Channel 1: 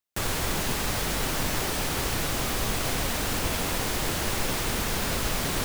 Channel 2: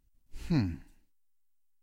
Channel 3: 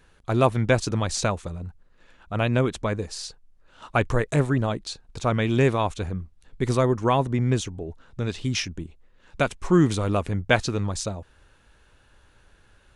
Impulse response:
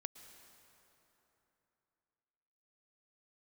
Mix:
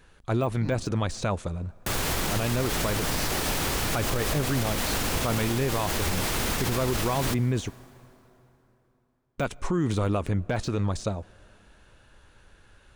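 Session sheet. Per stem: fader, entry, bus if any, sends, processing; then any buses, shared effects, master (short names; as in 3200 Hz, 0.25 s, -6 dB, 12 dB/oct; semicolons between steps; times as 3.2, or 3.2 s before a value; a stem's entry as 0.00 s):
-0.5 dB, 1.70 s, send -4 dB, vibrato 1.7 Hz 39 cents
-8.5 dB, 0.10 s, no send, dry
+0.5 dB, 0.00 s, muted 7.7–9.38, send -15 dB, de-esser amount 80%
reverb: on, RT60 3.3 s, pre-delay 0.103 s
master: limiter -17 dBFS, peak gain reduction 10.5 dB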